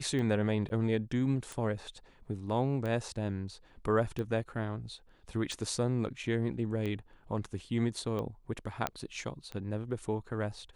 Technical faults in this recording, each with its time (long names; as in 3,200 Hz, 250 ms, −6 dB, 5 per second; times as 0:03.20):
scratch tick 45 rpm −25 dBFS
0:00.69–0:00.70: drop-out 10 ms
0:08.87: click −15 dBFS